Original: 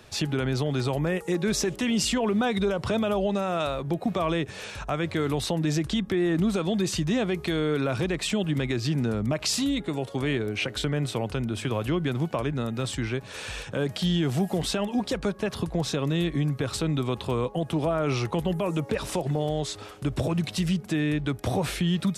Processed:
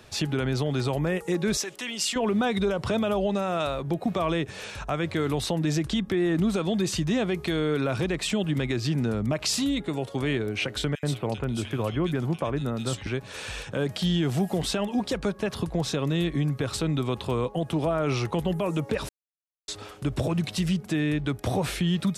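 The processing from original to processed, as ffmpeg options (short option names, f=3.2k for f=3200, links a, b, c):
-filter_complex "[0:a]asettb=1/sr,asplit=3[a][b][c];[a]atrim=end=1.574[d];[b]atrim=start=1.57:end=2.16,asetpts=PTS-STARTPTS,afade=t=in:d=0.004:c=qsin,afade=t=out:st=0.586:d=0.004:c=qsin,highpass=f=1.2k:p=1[e];[c]atrim=start=2.156[f];[d][e]acrossfade=d=0.004:c1=hsin:c2=qsin[g];[g][f]acrossfade=d=0.004:c1=qsin:c2=hsin,asettb=1/sr,asplit=3[h][i][j];[h]atrim=end=10.954[k];[i]atrim=start=10.95:end=13.07,asetpts=PTS-STARTPTS,afade=t=in:d=0.004:c=qsin,afade=t=out:st=2.116:d=0.004:c=qsin,acrossover=split=2300[l][m];[l]adelay=80[n];[n][m]amix=inputs=2:normalize=0,atrim=end_sample=93492[o];[j]atrim=start=13.066[p];[k][o]acrossfade=d=0.004:c1=hsin:c2=qsin[q];[q][p]acrossfade=d=0.004:c1=qsin:c2=hsin,asplit=3[r][s][t];[r]atrim=end=19.09,asetpts=PTS-STARTPTS,afade=t=out:st=19.086:d=0.004:c=hsin[u];[s]atrim=start=19.09:end=19.68,asetpts=PTS-STARTPTS,volume=0[v];[t]atrim=start=19.68,asetpts=PTS-STARTPTS,afade=t=in:d=0.004:c=hsin[w];[u][v][w]concat=n=3:v=0:a=1"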